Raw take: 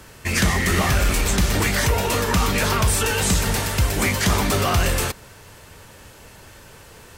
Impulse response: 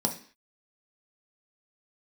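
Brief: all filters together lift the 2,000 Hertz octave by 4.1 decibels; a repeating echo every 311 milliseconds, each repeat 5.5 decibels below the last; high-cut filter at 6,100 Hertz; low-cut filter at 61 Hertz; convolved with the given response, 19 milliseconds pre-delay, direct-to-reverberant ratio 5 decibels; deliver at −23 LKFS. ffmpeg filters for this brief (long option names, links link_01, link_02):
-filter_complex "[0:a]highpass=61,lowpass=6100,equalizer=frequency=2000:width_type=o:gain=5,aecho=1:1:311|622|933|1244|1555|1866|2177:0.531|0.281|0.149|0.079|0.0419|0.0222|0.0118,asplit=2[link_01][link_02];[1:a]atrim=start_sample=2205,adelay=19[link_03];[link_02][link_03]afir=irnorm=-1:irlink=0,volume=-12.5dB[link_04];[link_01][link_04]amix=inputs=2:normalize=0,volume=-6dB"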